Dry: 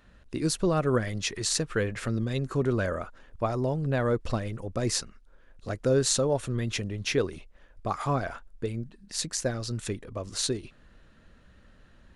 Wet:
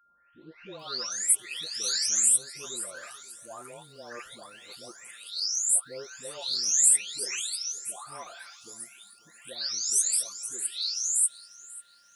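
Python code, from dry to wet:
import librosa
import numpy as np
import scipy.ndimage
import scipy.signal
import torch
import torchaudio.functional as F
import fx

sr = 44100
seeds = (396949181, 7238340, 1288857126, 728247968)

p1 = fx.spec_delay(x, sr, highs='late', ms=797)
p2 = fx.high_shelf(p1, sr, hz=5900.0, db=6.5)
p3 = p2 + 10.0 ** (-57.0 / 20.0) * np.sin(2.0 * np.pi * 1400.0 * np.arange(len(p2)) / sr)
p4 = np.diff(p3, prepend=0.0)
p5 = p4 + fx.echo_feedback(p4, sr, ms=540, feedback_pct=30, wet_db=-20.0, dry=0)
y = p5 * 10.0 ** (7.5 / 20.0)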